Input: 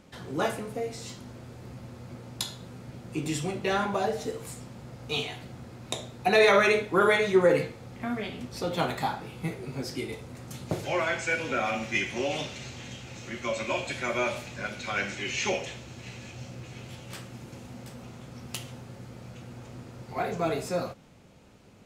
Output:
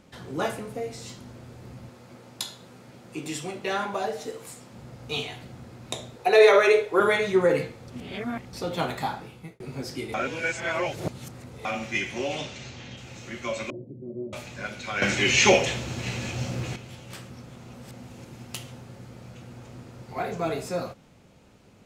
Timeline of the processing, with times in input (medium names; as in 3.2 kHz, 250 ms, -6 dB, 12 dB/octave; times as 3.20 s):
1.89–4.73 s: high-pass 300 Hz 6 dB/octave
6.16–7.00 s: resonant low shelf 320 Hz -8.5 dB, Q 3
7.88–8.53 s: reverse
9.18–9.60 s: fade out
10.14–11.65 s: reverse
12.35–12.96 s: low-pass 10 kHz -> 5.3 kHz 24 dB/octave
13.70–14.33 s: elliptic band-pass 110–400 Hz, stop band 60 dB
15.02–16.76 s: gain +11 dB
17.30–18.47 s: reverse